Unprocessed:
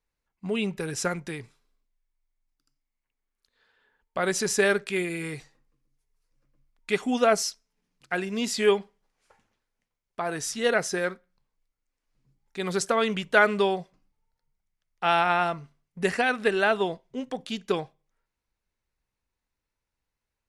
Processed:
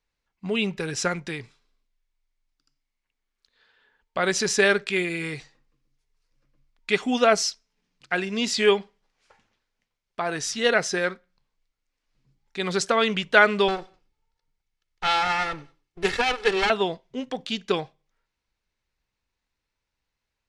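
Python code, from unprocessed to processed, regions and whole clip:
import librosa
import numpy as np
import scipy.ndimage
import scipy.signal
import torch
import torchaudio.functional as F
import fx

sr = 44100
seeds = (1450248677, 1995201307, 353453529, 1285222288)

y = fx.chain(x, sr, fx.lower_of_two(delay_ms=2.3),
    fx.echo_feedback(ms=94, feedback_pct=29, wet_db=-24), at=(13.68, 16.7))
y = scipy.signal.sosfilt(scipy.signal.butter(2, 4300.0, 'lowpass', fs=sr, output='sos'), y)
y = fx.high_shelf(y, sr, hz=3100.0, db=11.5)
y = y * librosa.db_to_amplitude(1.5)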